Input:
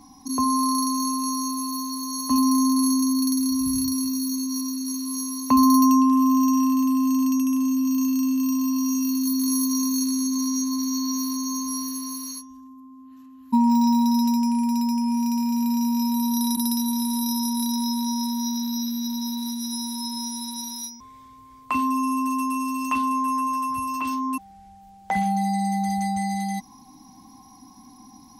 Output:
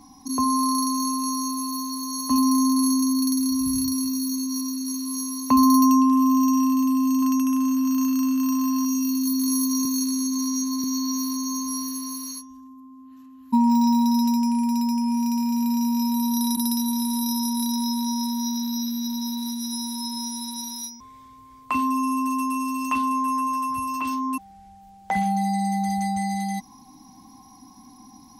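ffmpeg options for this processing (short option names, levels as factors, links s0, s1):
-filter_complex "[0:a]asettb=1/sr,asplit=3[s0][s1][s2];[s0]atrim=end=7.224[s3];[s1]atrim=start=7.22:end=8.85,asetpts=PTS-STARTPTS,afade=t=in:d=0.004:c=qsin,afade=t=out:st=1.626:d=0.004:c=qsin,equalizer=f=1400:t=o:w=0.86:g=12[s4];[s2]atrim=start=8.846[s5];[s3][s4]acrossfade=d=0.004:c1=hsin:c2=qsin[s6];[s6][s5]acrossfade=d=0.004:c1=qsin:c2=hsin,asettb=1/sr,asplit=3[s7][s8][s9];[s7]atrim=end=9.854[s10];[s8]atrim=start=9.85:end=10.84,asetpts=PTS-STARTPTS,afade=t=in:d=0.004:c=qsin,afade=t=out:st=0.986:d=0.004:c=qsin,highpass=180[s11];[s9]atrim=start=10.836[s12];[s10][s11]acrossfade=d=0.004:c1=hsin:c2=qsin[s13];[s13][s12]acrossfade=d=0.004:c1=qsin:c2=hsin"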